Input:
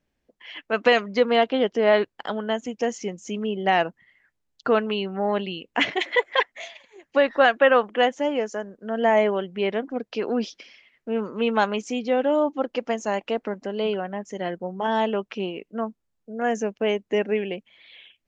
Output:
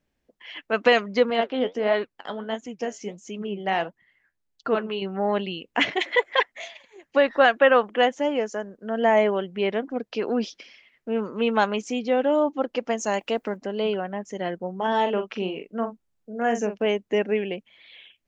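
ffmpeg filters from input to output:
ffmpeg -i in.wav -filter_complex "[0:a]asettb=1/sr,asplit=3[link_01][link_02][link_03];[link_01]atrim=end=1.304[link_04];[link_02]atrim=start=1.3:end=5.02,asetpts=PTS-STARTPTS,afade=type=in:duration=0.004:curve=qsin,afade=type=out:start_time=3.716:duration=0.004:curve=qsin,flanger=delay=2.6:depth=9.4:regen=62:speed=1.5:shape=sinusoidal[link_05];[link_03]atrim=start=5.016[link_06];[link_04][link_05]acrossfade=duration=0.004:curve1=hsin:curve2=qsin[link_07];[link_07][link_06]acrossfade=duration=0.004:curve1=qsin:curve2=hsin,asettb=1/sr,asplit=3[link_08][link_09][link_10];[link_08]atrim=end=12.994[link_11];[link_09]atrim=start=12.99:end=13.57,asetpts=PTS-STARTPTS,afade=type=in:duration=0.004:curve=qsin,afade=type=out:start_time=0.576:duration=0.004:curve=qsin,aemphasis=mode=production:type=50kf[link_12];[link_10]atrim=start=13.566[link_13];[link_11][link_12]acrossfade=duration=0.004:curve1=hsin:curve2=qsin[link_14];[link_14][link_13]acrossfade=duration=0.004:curve1=qsin:curve2=hsin,asettb=1/sr,asplit=3[link_15][link_16][link_17];[link_15]atrim=end=14.884[link_18];[link_16]atrim=start=14.88:end=16.86,asetpts=PTS-STARTPTS,afade=type=in:duration=0.004:curve=qsin,afade=type=out:start_time=1.976:duration=0.004:curve=qsin,asplit=2[link_19][link_20];[link_20]adelay=43,volume=-8dB[link_21];[link_19][link_21]amix=inputs=2:normalize=0,atrim=end_sample=87318[link_22];[link_17]atrim=start=16.856[link_23];[link_18][link_22]acrossfade=duration=0.004:curve1=hsin:curve2=qsin[link_24];[link_24][link_23]acrossfade=duration=0.004:curve1=qsin:curve2=hsin" out.wav

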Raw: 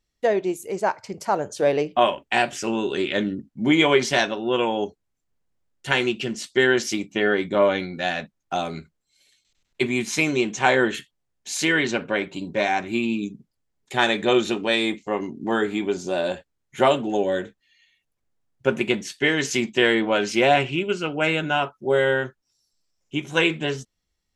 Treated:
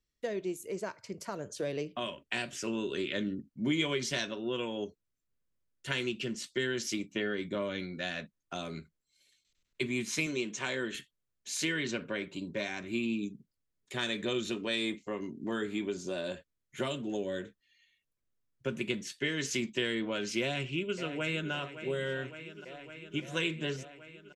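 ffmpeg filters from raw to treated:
ffmpeg -i in.wav -filter_complex "[0:a]asettb=1/sr,asplit=3[link_01][link_02][link_03];[link_01]atrim=end=10.264[link_04];[link_02]atrim=start=10.26:end=10.95,asetpts=PTS-STARTPTS,afade=type=in:duration=0.004:curve=qsin,afade=type=out:start_time=0.686:duration=0.004:curve=qsin,highpass=frequency=210:poles=1[link_05];[link_03]atrim=start=10.946[link_06];[link_04][link_05]acrossfade=duration=0.004:curve1=hsin:curve2=qsin[link_07];[link_07][link_06]acrossfade=duration=0.004:curve1=qsin:curve2=hsin,asplit=2[link_08][link_09];[link_09]afade=type=in:start_time=20.41:duration=0.01,afade=type=out:start_time=21.52:duration=0.01,aecho=0:1:560|1120|1680|2240|2800|3360|3920|4480|5040|5600|6160|6720:0.177828|0.142262|0.11381|0.0910479|0.0728383|0.0582707|0.0466165|0.0372932|0.0298346|0.0238677|0.0190941|0.0152753[link_10];[link_08][link_10]amix=inputs=2:normalize=0,acrossover=split=240|3000[link_11][link_12][link_13];[link_12]acompressor=threshold=-25dB:ratio=6[link_14];[link_11][link_14][link_13]amix=inputs=3:normalize=0,equalizer=frequency=800:width_type=o:width=0.25:gain=-14.5,volume=-7.5dB" out.wav

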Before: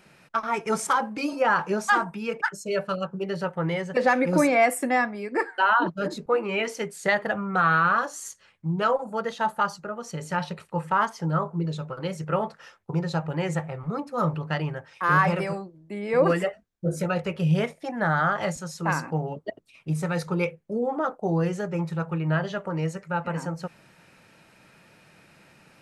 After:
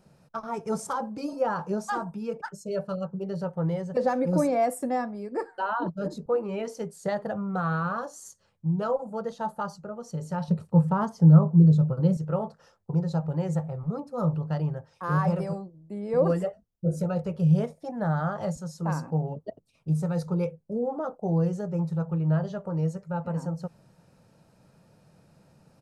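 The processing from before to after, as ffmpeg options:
ffmpeg -i in.wav -filter_complex "[0:a]asettb=1/sr,asplit=3[link_01][link_02][link_03];[link_01]atrim=end=10.484[link_04];[link_02]atrim=start=10.48:end=12.17,asetpts=PTS-STARTPTS,afade=type=in:duration=0.004:curve=qsin,afade=type=out:start_time=1.686:duration=0.004:curve=qsin,equalizer=frequency=150:width_type=o:width=2.7:gain=11[link_05];[link_03]atrim=start=12.166[link_06];[link_04][link_05]acrossfade=duration=0.004:curve1=hsin:curve2=qsin[link_07];[link_07][link_06]acrossfade=duration=0.004:curve1=qsin:curve2=hsin,firequalizer=gain_entry='entry(140,0);entry(340,-9);entry(480,-4);entry(2100,-22);entry(4700,-10)':delay=0.05:min_phase=1,volume=2.5dB" out.wav

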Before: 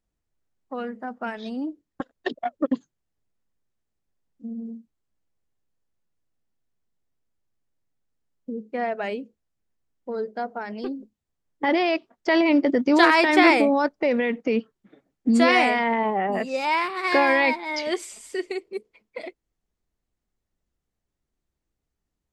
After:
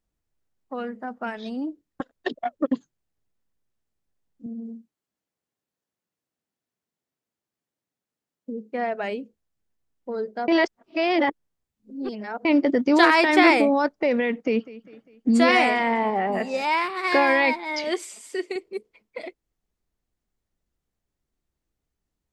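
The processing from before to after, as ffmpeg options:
ffmpeg -i in.wav -filter_complex "[0:a]asettb=1/sr,asplit=3[link_01][link_02][link_03];[link_01]atrim=end=4.464[link_04];[link_02]atrim=start=4.46:end=8.73,asetpts=PTS-STARTPTS,afade=type=in:duration=0.004:curve=qsin,afade=type=out:start_time=4.266:duration=0.004:curve=qsin,highpass=170[link_05];[link_03]atrim=start=8.726[link_06];[link_04][link_05]acrossfade=duration=0.004:curve1=hsin:curve2=qsin[link_07];[link_07][link_06]acrossfade=duration=0.004:curve1=qsin:curve2=hsin,asettb=1/sr,asplit=3[link_08][link_09][link_10];[link_08]atrim=end=14.414[link_11];[link_09]atrim=start=14.41:end=16.64,asetpts=PTS-STARTPTS,afade=type=in:duration=0.004:curve=qsin,afade=type=out:start_time=2.226:duration=0.004:curve=qsin,aecho=1:1:200|400|600|800:0.119|0.0559|0.0263|0.0123,atrim=end_sample=98343[link_12];[link_10]atrim=start=16.636[link_13];[link_11][link_12]acrossfade=duration=0.004:curve1=hsin:curve2=qsin[link_14];[link_14][link_13]acrossfade=duration=0.004:curve1=qsin:curve2=hsin,asettb=1/sr,asplit=3[link_15][link_16][link_17];[link_15]atrim=end=17.844[link_18];[link_16]atrim=start=17.84:end=18.56,asetpts=PTS-STARTPTS,afade=type=in:duration=0.004:curve=qsin,afade=type=out:start_time=0.716:duration=0.004:curve=qsin,highpass=frequency=160:width=0.5412,highpass=frequency=160:width=1.3066[link_19];[link_17]atrim=start=18.556[link_20];[link_18][link_19]acrossfade=duration=0.004:curve1=hsin:curve2=qsin[link_21];[link_21][link_20]acrossfade=duration=0.004:curve1=qsin:curve2=hsin,asplit=3[link_22][link_23][link_24];[link_22]atrim=end=10.482[link_25];[link_23]atrim=start=10.478:end=12.452,asetpts=PTS-STARTPTS,areverse[link_26];[link_24]atrim=start=12.448[link_27];[link_25][link_26]acrossfade=duration=0.004:curve1=hsin:curve2=hsin[link_28];[link_28][link_27]acrossfade=duration=0.004:curve1=hsin:curve2=hsin" out.wav

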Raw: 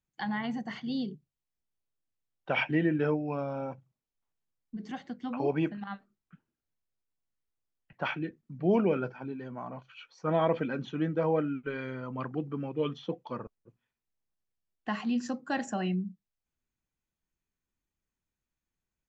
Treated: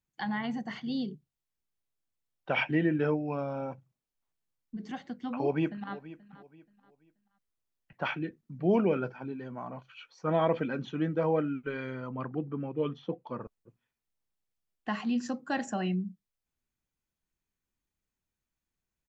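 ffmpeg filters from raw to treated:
ffmpeg -i in.wav -filter_complex "[0:a]asplit=2[link_01][link_02];[link_02]afade=type=in:start_time=5.35:duration=0.01,afade=type=out:start_time=5.94:duration=0.01,aecho=0:1:480|960|1440:0.141254|0.0423761|0.0127128[link_03];[link_01][link_03]amix=inputs=2:normalize=0,asettb=1/sr,asplit=3[link_04][link_05][link_06];[link_04]atrim=end=12.094[link_07];[link_05]atrim=start=12.09:end=13.41,asetpts=PTS-STARTPTS,afade=type=in:duration=0.004:curve=qsin,afade=type=out:start_time=1.316:duration=0.004:curve=qsin,highshelf=frequency=2900:gain=-11[link_08];[link_06]atrim=start=13.406[link_09];[link_07][link_08]acrossfade=duration=0.004:curve1=hsin:curve2=qsin[link_10];[link_10][link_09]acrossfade=duration=0.004:curve1=qsin:curve2=hsin" out.wav

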